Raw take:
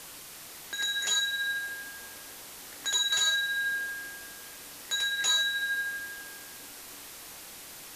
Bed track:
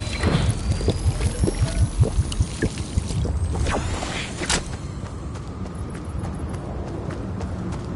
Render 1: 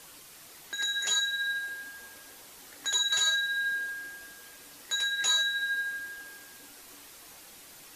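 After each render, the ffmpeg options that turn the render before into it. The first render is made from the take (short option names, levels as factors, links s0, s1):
-af "afftdn=nr=6:nf=-46"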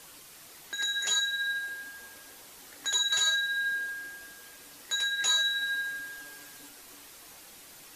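-filter_complex "[0:a]asettb=1/sr,asplit=3[s0][s1][s2];[s0]atrim=end=5.434[s3];[s1]atrim=start=5.43:end=6.69,asetpts=PTS-STARTPTS,afade=t=in:d=0.004:c=qsin,afade=t=out:st=1.256:d=0.004:c=qsin,aecho=1:1:7:0.65,atrim=end_sample=55566[s4];[s2]atrim=start=6.686[s5];[s3][s4]acrossfade=d=0.004:c1=hsin:c2=qsin[s6];[s6][s5]acrossfade=d=0.004:c1=qsin:c2=hsin"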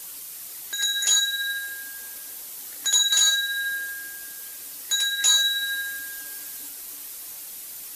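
-af "aemphasis=mode=production:type=75kf"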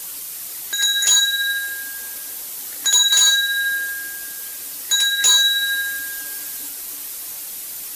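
-af "aeval=exprs='0.355*sin(PI/2*1.41*val(0)/0.355)':c=same"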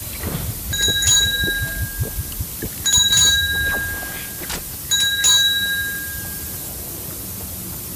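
-filter_complex "[1:a]volume=0.501[s0];[0:a][s0]amix=inputs=2:normalize=0"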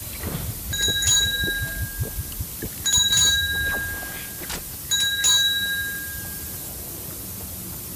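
-af "volume=0.631"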